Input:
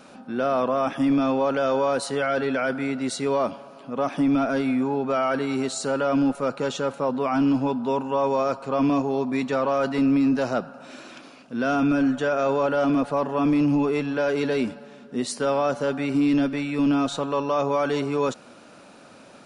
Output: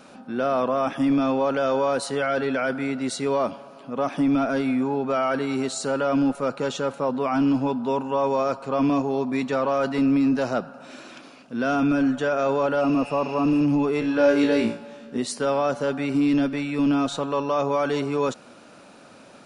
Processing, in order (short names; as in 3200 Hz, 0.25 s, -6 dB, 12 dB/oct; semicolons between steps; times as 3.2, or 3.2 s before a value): 12.84–13.59 spectral repair 1400–6800 Hz after; 14–15.18 flutter echo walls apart 3 m, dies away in 0.34 s